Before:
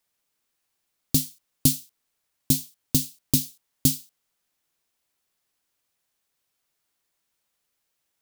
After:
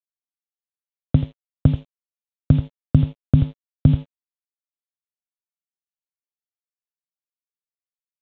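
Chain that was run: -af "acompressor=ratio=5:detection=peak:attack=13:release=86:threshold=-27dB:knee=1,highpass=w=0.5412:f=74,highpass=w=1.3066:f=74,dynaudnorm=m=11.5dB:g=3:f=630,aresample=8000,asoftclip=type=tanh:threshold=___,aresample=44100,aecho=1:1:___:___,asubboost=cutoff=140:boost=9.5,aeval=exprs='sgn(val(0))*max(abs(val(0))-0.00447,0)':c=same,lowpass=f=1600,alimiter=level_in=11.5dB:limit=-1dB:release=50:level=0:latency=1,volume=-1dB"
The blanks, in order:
-17.5dB, 83, 0.299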